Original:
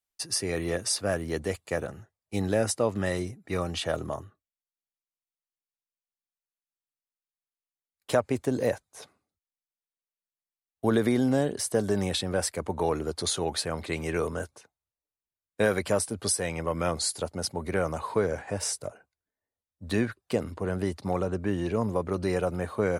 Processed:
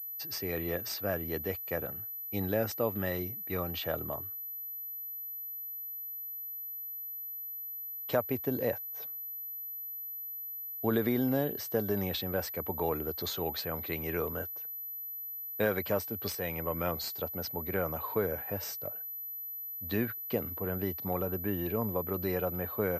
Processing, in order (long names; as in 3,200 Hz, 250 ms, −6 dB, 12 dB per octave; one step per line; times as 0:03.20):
switching amplifier with a slow clock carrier 12,000 Hz
level −5 dB